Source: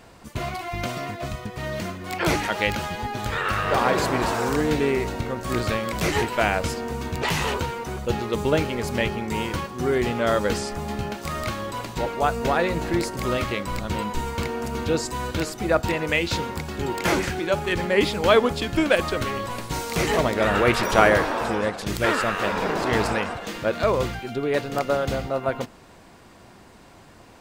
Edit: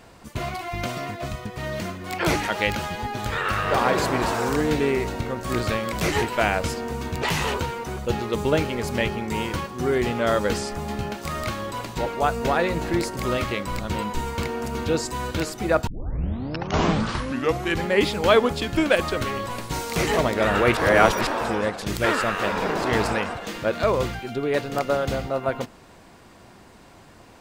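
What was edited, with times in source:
15.87 tape start 1.99 s
20.77–21.27 reverse

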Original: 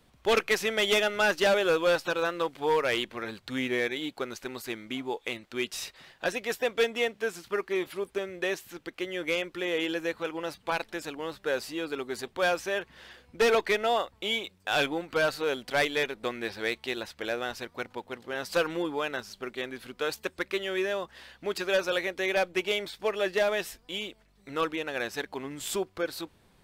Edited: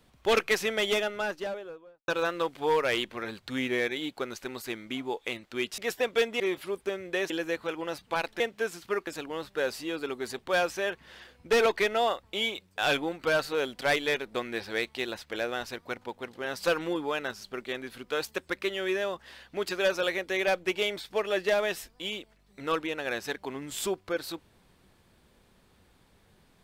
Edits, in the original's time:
0.52–2.08 studio fade out
5.78–6.4 cut
7.02–7.69 move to 10.96
8.59–9.86 cut

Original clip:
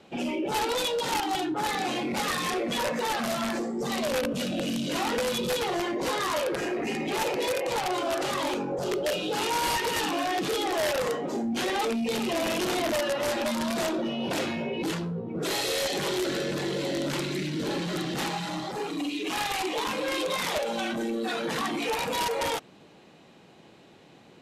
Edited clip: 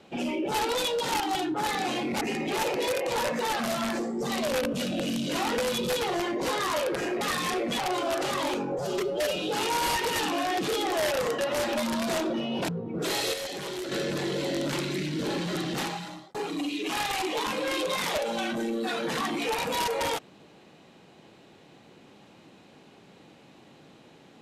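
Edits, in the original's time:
2.21–2.79 swap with 6.81–7.79
8.78–9.17 stretch 1.5×
11.19–13.07 cut
14.37–15.09 cut
15.74–16.32 gain -6.5 dB
18.18–18.75 fade out

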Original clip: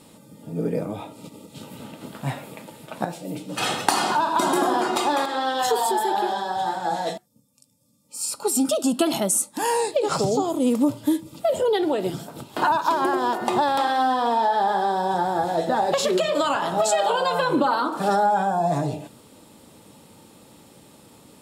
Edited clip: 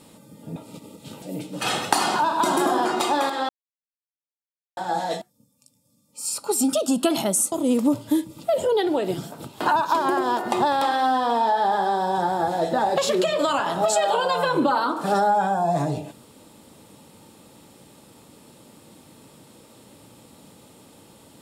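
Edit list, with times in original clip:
0.56–1.06 cut
1.72–3.18 cut
5.45–6.73 mute
9.48–10.48 cut

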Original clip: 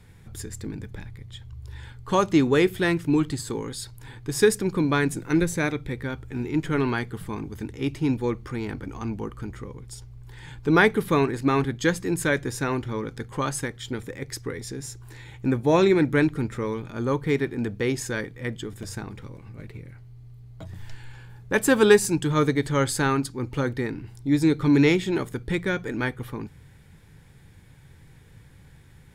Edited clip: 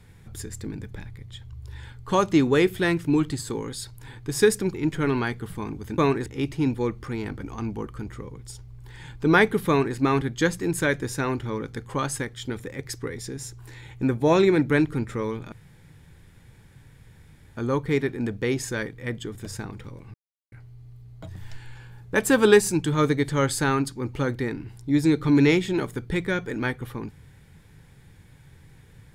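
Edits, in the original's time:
4.74–6.45 cut
11.11–11.39 copy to 7.69
16.95 insert room tone 2.05 s
19.52–19.9 mute

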